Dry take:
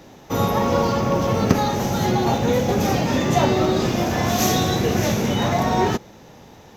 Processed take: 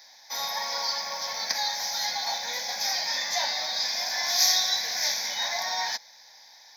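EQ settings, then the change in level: high-pass 1.4 kHz 12 dB/octave; peaking EQ 5 kHz +11 dB 0.61 oct; static phaser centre 1.9 kHz, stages 8; 0.0 dB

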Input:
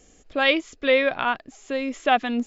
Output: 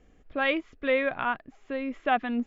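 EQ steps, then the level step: low-pass 1.8 kHz 12 dB/octave; peaking EQ 520 Hz -6 dB 2.5 oct; 0.0 dB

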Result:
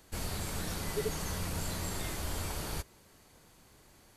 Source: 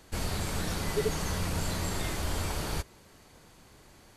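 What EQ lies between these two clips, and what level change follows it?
treble shelf 10 kHz +8.5 dB; -5.0 dB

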